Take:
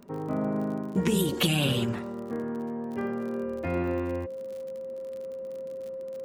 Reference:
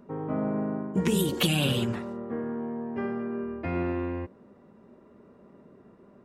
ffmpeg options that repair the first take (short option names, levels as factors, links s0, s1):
-af "adeclick=t=4,bandreject=f=530:w=30"